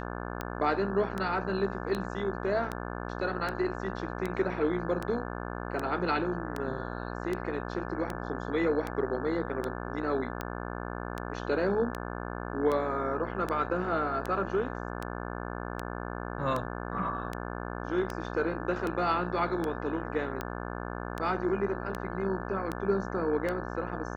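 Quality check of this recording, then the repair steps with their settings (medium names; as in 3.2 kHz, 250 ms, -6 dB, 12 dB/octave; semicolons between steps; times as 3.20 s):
buzz 60 Hz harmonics 29 -37 dBFS
tick 78 rpm -19 dBFS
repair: de-click; de-hum 60 Hz, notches 29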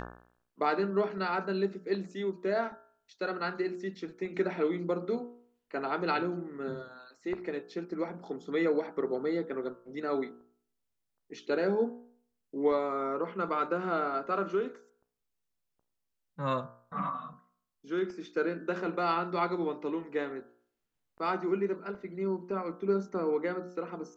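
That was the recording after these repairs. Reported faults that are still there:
nothing left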